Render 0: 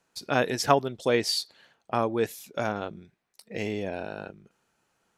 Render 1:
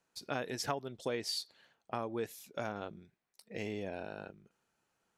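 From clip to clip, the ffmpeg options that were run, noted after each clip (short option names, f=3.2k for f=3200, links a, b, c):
-af "acompressor=threshold=-25dB:ratio=4,volume=-7.5dB"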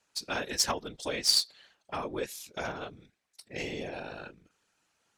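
-af "afftfilt=real='hypot(re,im)*cos(2*PI*random(0))':imag='hypot(re,im)*sin(2*PI*random(1))':win_size=512:overlap=0.75,crystalizer=i=6:c=0,adynamicsmooth=sensitivity=4.5:basefreq=5.7k,volume=7dB"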